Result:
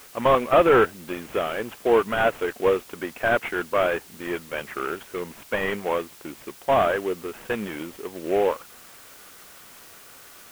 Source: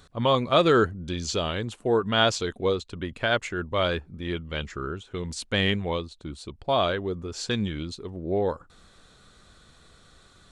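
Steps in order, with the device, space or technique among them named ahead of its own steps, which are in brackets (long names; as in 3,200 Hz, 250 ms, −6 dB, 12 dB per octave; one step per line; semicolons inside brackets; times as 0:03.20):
army field radio (band-pass filter 360–3,100 Hz; variable-slope delta modulation 16 kbit/s; white noise bed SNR 23 dB)
level +6.5 dB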